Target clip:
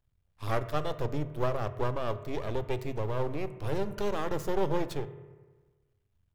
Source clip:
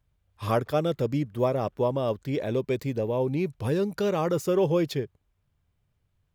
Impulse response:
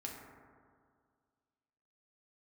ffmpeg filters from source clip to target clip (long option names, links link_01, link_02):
-filter_complex "[0:a]aeval=exprs='max(val(0),0)':channel_layout=same,asplit=2[link_01][link_02];[link_02]lowshelf=frequency=160:width_type=q:width=1.5:gain=10[link_03];[1:a]atrim=start_sample=2205,asetrate=66150,aresample=44100[link_04];[link_03][link_04]afir=irnorm=-1:irlink=0,volume=-3dB[link_05];[link_01][link_05]amix=inputs=2:normalize=0,volume=-4.5dB"